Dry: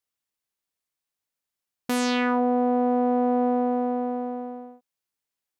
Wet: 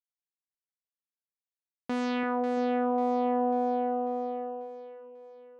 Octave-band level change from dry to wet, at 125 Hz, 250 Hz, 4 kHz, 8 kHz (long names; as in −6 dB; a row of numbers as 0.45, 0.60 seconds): can't be measured, −6.5 dB, −10.5 dB, below −15 dB